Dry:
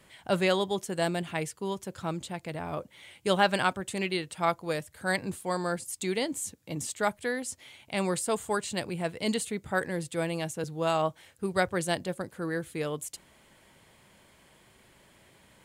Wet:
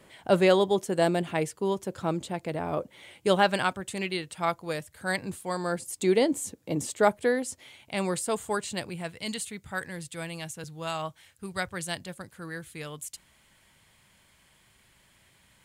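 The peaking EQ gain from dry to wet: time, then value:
peaking EQ 420 Hz 2.4 oct
3.12 s +6.5 dB
3.70 s -1.5 dB
5.56 s -1.5 dB
6.05 s +9 dB
7.23 s +9 dB
7.81 s 0 dB
8.68 s 0 dB
9.23 s -10 dB

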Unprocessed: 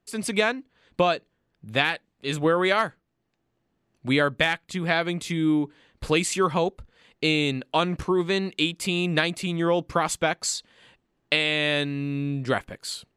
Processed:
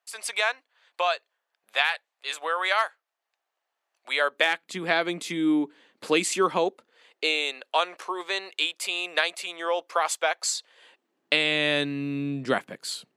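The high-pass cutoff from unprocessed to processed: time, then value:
high-pass 24 dB/octave
4.11 s 670 Hz
4.65 s 230 Hz
6.55 s 230 Hz
7.49 s 530 Hz
10.56 s 530 Hz
11.47 s 160 Hz

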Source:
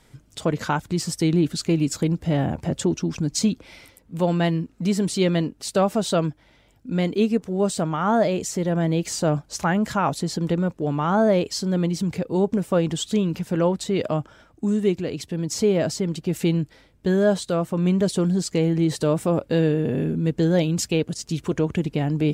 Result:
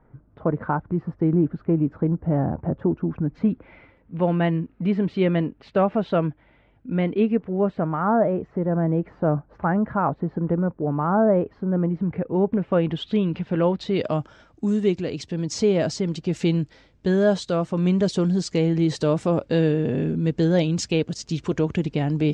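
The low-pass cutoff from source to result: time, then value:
low-pass 24 dB/octave
2.88 s 1.4 kHz
4.23 s 2.6 kHz
7.30 s 2.6 kHz
8.25 s 1.5 kHz
11.82 s 1.5 kHz
13.05 s 3.4 kHz
13.62 s 3.4 kHz
14.19 s 6.6 kHz

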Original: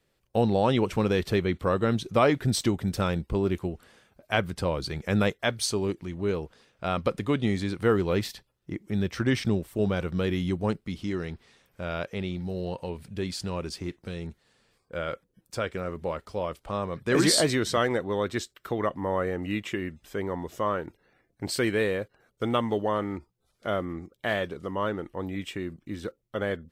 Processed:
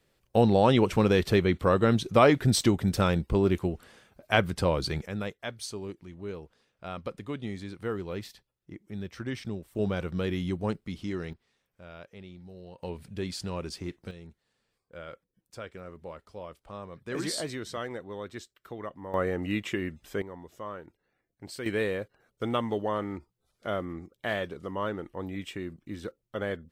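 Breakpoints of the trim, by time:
+2 dB
from 5.06 s -10 dB
from 9.75 s -3 dB
from 11.33 s -14.5 dB
from 12.83 s -2.5 dB
from 14.11 s -11 dB
from 19.14 s 0 dB
from 20.22 s -11.5 dB
from 21.66 s -3 dB

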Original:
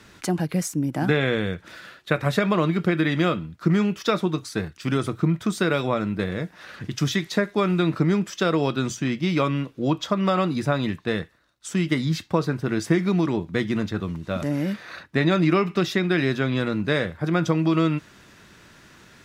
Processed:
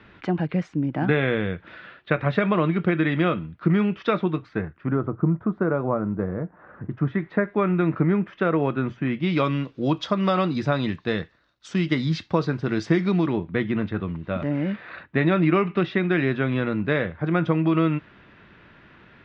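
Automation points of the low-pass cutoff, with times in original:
low-pass 24 dB/octave
4.30 s 3.1 kHz
5.04 s 1.3 kHz
6.79 s 1.3 kHz
7.55 s 2.3 kHz
9.03 s 2.3 kHz
9.46 s 5.1 kHz
13.03 s 5.1 kHz
13.45 s 3 kHz

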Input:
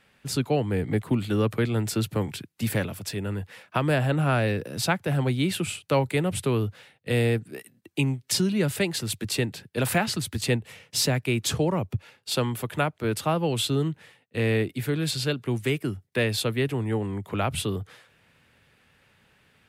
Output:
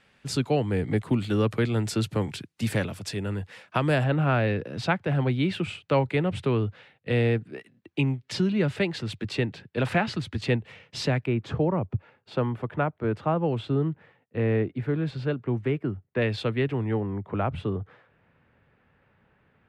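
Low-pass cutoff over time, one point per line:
8 kHz
from 4.04 s 3.2 kHz
from 11.26 s 1.5 kHz
from 16.22 s 2.7 kHz
from 17.00 s 1.5 kHz

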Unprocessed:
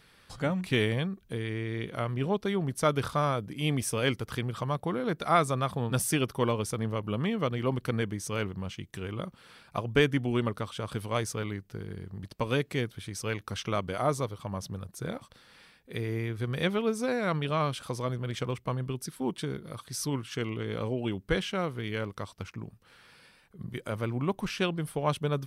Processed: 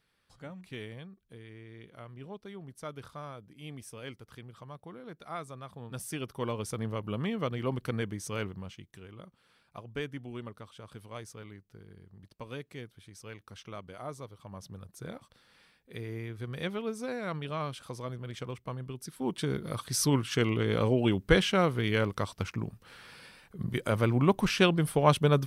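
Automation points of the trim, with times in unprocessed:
5.64 s -15.5 dB
6.76 s -3 dB
8.45 s -3 dB
9.08 s -13 dB
14.17 s -13 dB
14.87 s -6.5 dB
18.96 s -6.5 dB
19.64 s +5.5 dB

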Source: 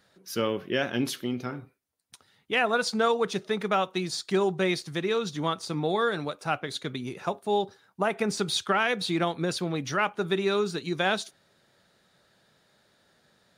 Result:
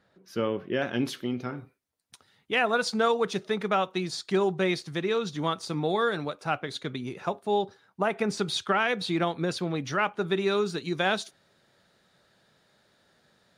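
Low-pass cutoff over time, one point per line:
low-pass 6 dB/octave
1.6 kHz
from 0.82 s 4 kHz
from 1.58 s 9.6 kHz
from 3.54 s 5.7 kHz
from 5.39 s 11 kHz
from 6.17 s 5 kHz
from 10.38 s 9.4 kHz

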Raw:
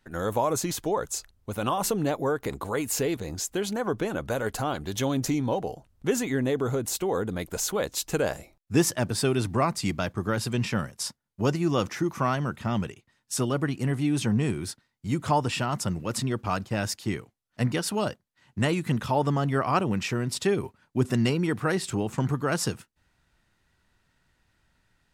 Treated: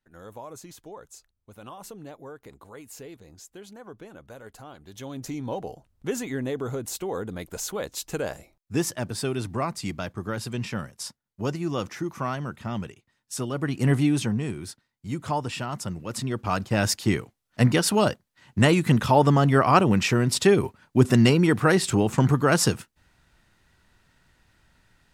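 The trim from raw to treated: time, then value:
4.77 s -15.5 dB
5.57 s -3.5 dB
13.52 s -3.5 dB
13.93 s +7 dB
14.41 s -3.5 dB
16.06 s -3.5 dB
16.89 s +6.5 dB

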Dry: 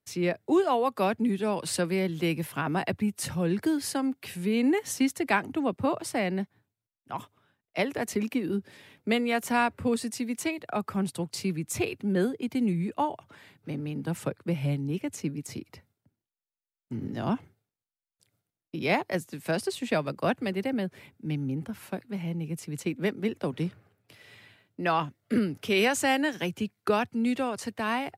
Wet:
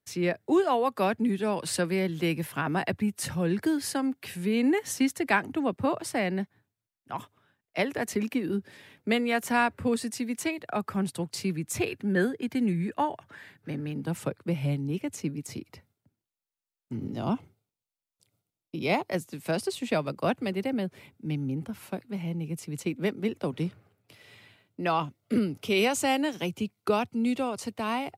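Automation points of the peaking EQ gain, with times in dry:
peaking EQ 1.7 kHz 0.33 oct
+3 dB
from 11.88 s +10.5 dB
from 13.92 s -1.5 dB
from 16.97 s -11.5 dB
from 19.07 s -4.5 dB
from 24.88 s -10.5 dB

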